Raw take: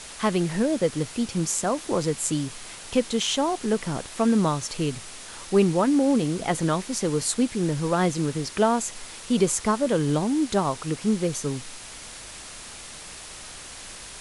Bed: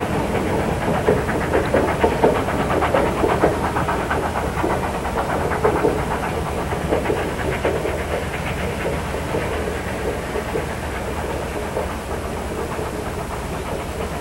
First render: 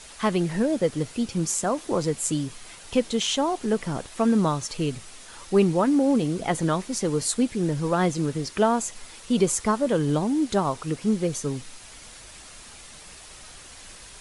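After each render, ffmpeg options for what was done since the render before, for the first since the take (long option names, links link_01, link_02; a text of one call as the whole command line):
ffmpeg -i in.wav -af "afftdn=noise_reduction=6:noise_floor=-41" out.wav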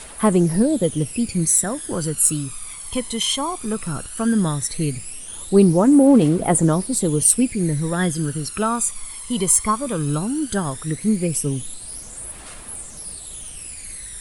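ffmpeg -i in.wav -af "aexciter=amount=4.4:drive=7.9:freq=8600,aphaser=in_gain=1:out_gain=1:delay=1:decay=0.65:speed=0.16:type=triangular" out.wav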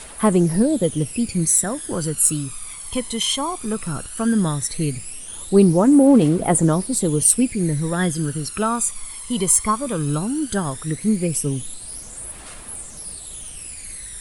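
ffmpeg -i in.wav -af anull out.wav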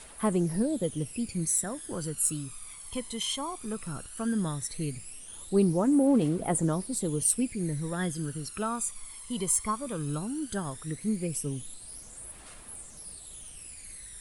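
ffmpeg -i in.wav -af "volume=-10.5dB" out.wav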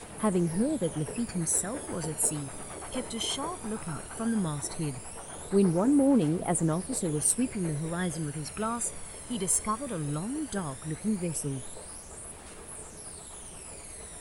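ffmpeg -i in.wav -i bed.wav -filter_complex "[1:a]volume=-24dB[link_01];[0:a][link_01]amix=inputs=2:normalize=0" out.wav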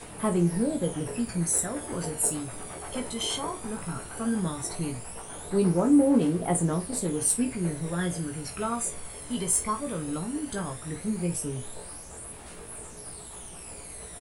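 ffmpeg -i in.wav -filter_complex "[0:a]asplit=2[link_01][link_02];[link_02]adelay=24,volume=-12dB[link_03];[link_01][link_03]amix=inputs=2:normalize=0,aecho=1:1:17|52:0.531|0.237" out.wav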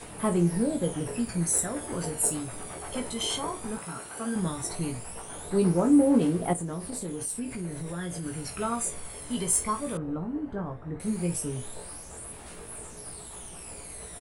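ffmpeg -i in.wav -filter_complex "[0:a]asettb=1/sr,asplit=3[link_01][link_02][link_03];[link_01]atrim=end=3.784[link_04];[link_02]atrim=start=3.78:end=4.36,asetpts=PTS-STARTPTS,afade=type=in:duration=0.004:curve=qsin,afade=type=out:start_time=0.576:duration=0.004:curve=qsin,highpass=frequency=310:poles=1[link_05];[link_03]atrim=start=4.356[link_06];[link_04][link_05]acrossfade=duration=0.004:curve1=hsin:curve2=qsin[link_07];[link_07][link_06]acrossfade=duration=0.004:curve1=qsin:curve2=hsin,asettb=1/sr,asplit=3[link_08][link_09][link_10];[link_08]atrim=end=6.534[link_11];[link_09]atrim=start=6.53:end=8.26,asetpts=PTS-STARTPTS,afade=type=in:duration=0.004:curve=qsin,afade=type=out:start_time=1.726:duration=0.004:curve=qsin,acompressor=threshold=-32dB:ratio=3:attack=3.2:release=140:knee=1:detection=peak[link_12];[link_10]atrim=start=8.256[link_13];[link_11][link_12]acrossfade=duration=0.004:curve1=hsin:curve2=qsin[link_14];[link_14][link_13]acrossfade=duration=0.004:curve1=qsin:curve2=hsin,asettb=1/sr,asplit=3[link_15][link_16][link_17];[link_15]atrim=end=9.974[link_18];[link_16]atrim=start=9.97:end=11,asetpts=PTS-STARTPTS,afade=type=in:duration=0.004:curve=qsin,afade=type=out:start_time=1.026:duration=0.004:curve=qsin,lowpass=1100[link_19];[link_17]atrim=start=10.996[link_20];[link_18][link_19]acrossfade=duration=0.004:curve1=hsin:curve2=qsin[link_21];[link_21][link_20]acrossfade=duration=0.004:curve1=qsin:curve2=hsin" out.wav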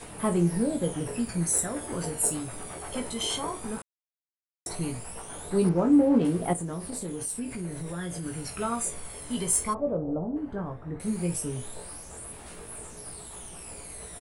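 ffmpeg -i in.wav -filter_complex "[0:a]asettb=1/sr,asplit=3[link_01][link_02][link_03];[link_01]atrim=end=5.694[link_04];[link_02]atrim=start=5.69:end=6.25,asetpts=PTS-STARTPTS,afade=type=in:duration=0.004:curve=qsin,afade=type=out:start_time=0.556:duration=0.004:curve=qsin,adynamicsmooth=sensitivity=3:basefreq=3600[link_05];[link_03]atrim=start=6.246[link_06];[link_04][link_05]acrossfade=duration=0.004:curve1=hsin:curve2=qsin[link_07];[link_07][link_06]acrossfade=duration=0.004:curve1=qsin:curve2=hsin,asplit=3[link_08][link_09][link_10];[link_08]afade=type=out:start_time=9.73:duration=0.02[link_11];[link_09]lowpass=frequency=640:width_type=q:width=2.9,afade=type=in:start_time=9.73:duration=0.02,afade=type=out:start_time=10.35:duration=0.02[link_12];[link_10]afade=type=in:start_time=10.35:duration=0.02[link_13];[link_11][link_12][link_13]amix=inputs=3:normalize=0,asplit=3[link_14][link_15][link_16];[link_14]atrim=end=3.82,asetpts=PTS-STARTPTS,afade=type=out:start_time=3.816:duration=0.004:curve=hsin[link_17];[link_15]atrim=start=3.82:end=4.66,asetpts=PTS-STARTPTS,volume=0[link_18];[link_16]atrim=start=4.66,asetpts=PTS-STARTPTS,afade=type=in:duration=0.004:curve=hsin[link_19];[link_17][link_18][link_19]concat=n=3:v=0:a=1" out.wav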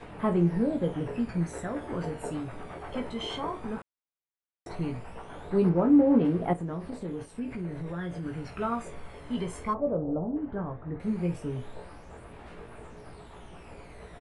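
ffmpeg -i in.wav -af "lowpass=2500" out.wav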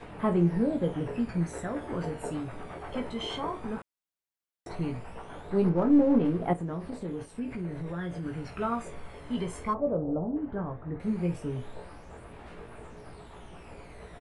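ffmpeg -i in.wav -filter_complex "[0:a]asettb=1/sr,asplit=3[link_01][link_02][link_03];[link_01]atrim=end=5.414[link_04];[link_02]atrim=start=5.41:end=6.48,asetpts=PTS-STARTPTS,afade=type=in:duration=0.004:curve=qsin,afade=type=out:start_time=1.066:duration=0.004:curve=qsin,aeval=exprs='if(lt(val(0),0),0.708*val(0),val(0))':channel_layout=same[link_05];[link_03]atrim=start=6.476[link_06];[link_04][link_05]acrossfade=duration=0.004:curve1=hsin:curve2=qsin[link_07];[link_07][link_06]acrossfade=duration=0.004:curve1=qsin:curve2=hsin" out.wav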